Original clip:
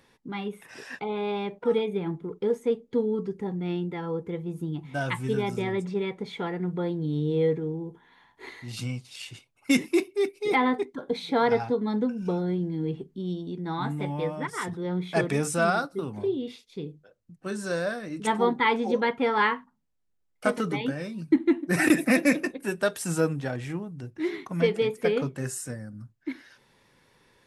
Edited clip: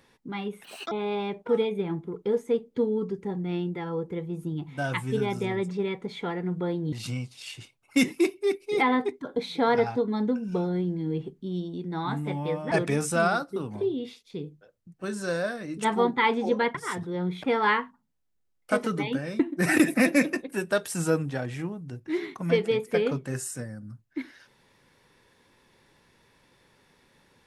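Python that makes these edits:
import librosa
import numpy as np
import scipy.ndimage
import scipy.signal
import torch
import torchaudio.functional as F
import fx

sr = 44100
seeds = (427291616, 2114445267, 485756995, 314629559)

y = fx.edit(x, sr, fx.speed_span(start_s=0.64, length_s=0.44, speed=1.6),
    fx.cut(start_s=7.09, length_s=1.57),
    fx.move(start_s=14.45, length_s=0.69, to_s=19.17),
    fx.cut(start_s=21.13, length_s=0.37), tone=tone)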